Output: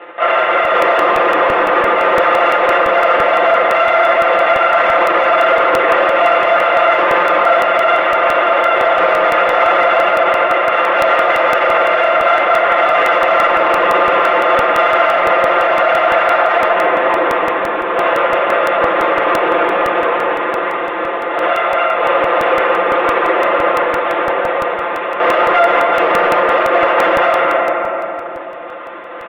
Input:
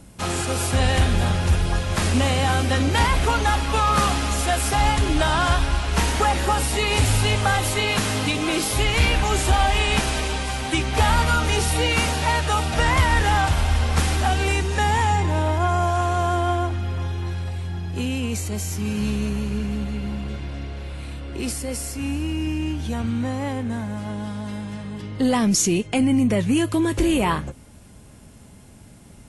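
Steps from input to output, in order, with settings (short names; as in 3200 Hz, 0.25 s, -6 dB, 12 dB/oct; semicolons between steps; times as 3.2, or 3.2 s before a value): sample sorter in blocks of 64 samples; LPC vocoder at 8 kHz whisper; low shelf 380 Hz -8.5 dB; on a send at -1 dB: reverb RT60 3.1 s, pre-delay 6 ms; on the sum: overdrive pedal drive 19 dB, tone 1800 Hz, clips at -4 dBFS; three-band isolator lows -23 dB, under 290 Hz, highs -18 dB, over 2500 Hz; reverse; upward compressor, threshold -31 dBFS; reverse; limiter -11.5 dBFS, peak gain reduction 7.5 dB; comb 5.8 ms, depth 74%; crackling interface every 0.17 s, samples 64, repeat, from 0.65; gain +5.5 dB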